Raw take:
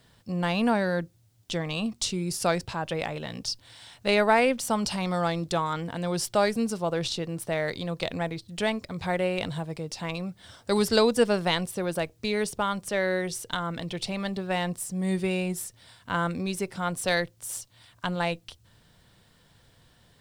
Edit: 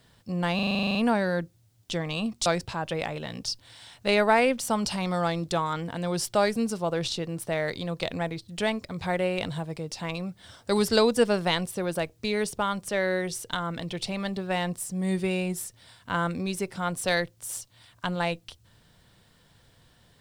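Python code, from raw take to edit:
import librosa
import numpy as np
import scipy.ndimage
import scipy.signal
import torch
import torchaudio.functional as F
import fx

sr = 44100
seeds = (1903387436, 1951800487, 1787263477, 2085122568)

y = fx.edit(x, sr, fx.stutter(start_s=0.55, slice_s=0.04, count=11),
    fx.cut(start_s=2.06, length_s=0.4), tone=tone)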